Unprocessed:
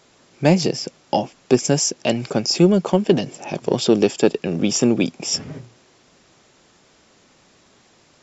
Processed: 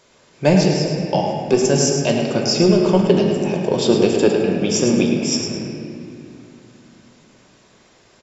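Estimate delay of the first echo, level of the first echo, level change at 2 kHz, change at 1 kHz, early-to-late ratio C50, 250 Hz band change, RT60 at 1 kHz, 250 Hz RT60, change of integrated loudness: 107 ms, −7.5 dB, +2.5 dB, +2.0 dB, 1.5 dB, +2.0 dB, 2.4 s, 3.5 s, +2.5 dB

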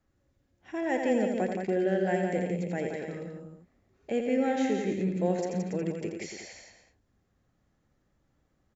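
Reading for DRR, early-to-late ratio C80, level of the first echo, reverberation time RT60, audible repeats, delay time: no reverb audible, no reverb audible, −6.0 dB, no reverb audible, 4, 85 ms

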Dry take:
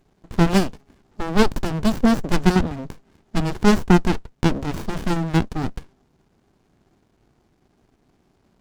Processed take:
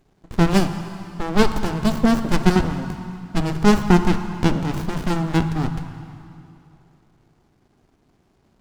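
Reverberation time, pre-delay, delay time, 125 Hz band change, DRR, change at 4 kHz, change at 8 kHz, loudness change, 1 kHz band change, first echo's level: 2.7 s, 8 ms, no echo audible, +1.5 dB, 8.0 dB, +0.5 dB, +0.5 dB, +0.5 dB, +1.0 dB, no echo audible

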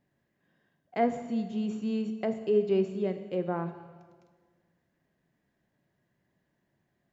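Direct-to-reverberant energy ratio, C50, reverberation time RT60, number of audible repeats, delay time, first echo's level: 8.5 dB, 10.5 dB, 1.6 s, no echo audible, no echo audible, no echo audible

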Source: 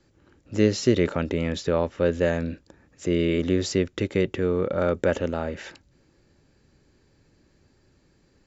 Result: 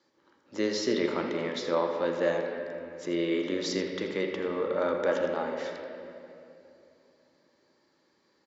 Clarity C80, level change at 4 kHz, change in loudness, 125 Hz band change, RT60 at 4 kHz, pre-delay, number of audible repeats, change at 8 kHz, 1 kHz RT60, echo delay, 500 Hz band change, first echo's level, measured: 4.0 dB, −2.0 dB, −5.5 dB, −16.5 dB, 1.9 s, 12 ms, 1, can't be measured, 2.5 s, 82 ms, −4.0 dB, −12.5 dB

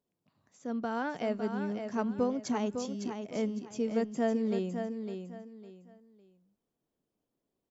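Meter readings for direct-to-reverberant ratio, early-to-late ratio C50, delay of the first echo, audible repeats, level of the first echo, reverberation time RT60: no reverb audible, no reverb audible, 556 ms, 3, −7.0 dB, no reverb audible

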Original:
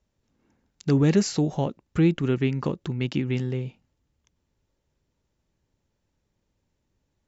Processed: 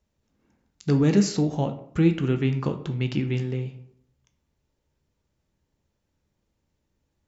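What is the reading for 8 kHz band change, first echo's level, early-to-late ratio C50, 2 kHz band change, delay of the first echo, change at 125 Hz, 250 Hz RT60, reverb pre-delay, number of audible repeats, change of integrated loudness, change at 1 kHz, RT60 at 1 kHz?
can't be measured, no echo audible, 11.5 dB, −0.5 dB, no echo audible, +1.0 dB, 0.75 s, 7 ms, no echo audible, +0.5 dB, 0.0 dB, 0.60 s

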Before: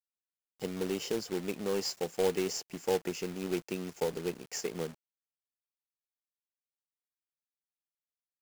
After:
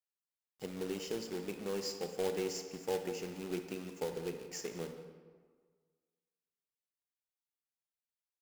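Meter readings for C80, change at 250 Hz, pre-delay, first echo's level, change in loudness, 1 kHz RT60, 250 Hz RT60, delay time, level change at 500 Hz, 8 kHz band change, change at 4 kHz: 8.5 dB, −5.0 dB, 33 ms, −18.5 dB, −5.0 dB, 1.6 s, 1.6 s, 178 ms, −5.0 dB, −5.5 dB, −5.5 dB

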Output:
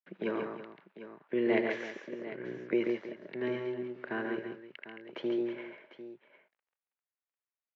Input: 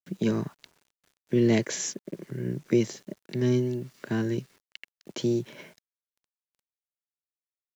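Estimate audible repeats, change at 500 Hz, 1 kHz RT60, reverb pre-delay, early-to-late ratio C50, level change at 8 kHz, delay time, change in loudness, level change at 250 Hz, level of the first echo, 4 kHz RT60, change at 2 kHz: 4, −3.5 dB, no reverb audible, no reverb audible, no reverb audible, can't be measured, 79 ms, −7.0 dB, −7.5 dB, −14.0 dB, no reverb audible, +1.0 dB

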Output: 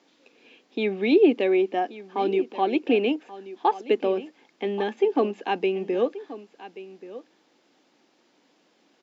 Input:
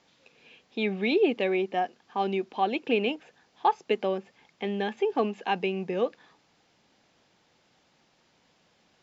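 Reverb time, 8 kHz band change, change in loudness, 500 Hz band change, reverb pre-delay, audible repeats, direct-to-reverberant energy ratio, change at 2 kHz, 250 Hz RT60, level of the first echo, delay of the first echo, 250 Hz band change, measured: no reverb audible, can't be measured, +4.0 dB, +5.0 dB, no reverb audible, 1, no reverb audible, 0.0 dB, no reverb audible, −16.0 dB, 1,131 ms, +5.5 dB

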